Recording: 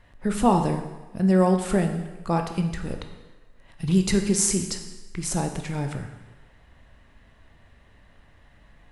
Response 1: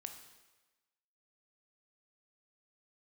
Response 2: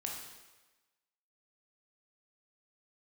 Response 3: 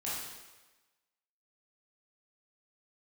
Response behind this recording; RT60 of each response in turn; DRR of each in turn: 1; 1.2 s, 1.2 s, 1.2 s; 5.0 dB, -1.0 dB, -8.5 dB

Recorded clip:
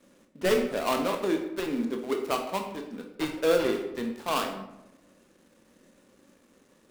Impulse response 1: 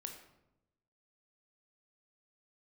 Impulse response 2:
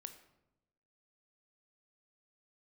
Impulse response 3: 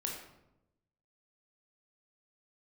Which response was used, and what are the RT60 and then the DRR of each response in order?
1; 0.90 s, 0.95 s, 0.90 s; 3.5 dB, 8.0 dB, -1.0 dB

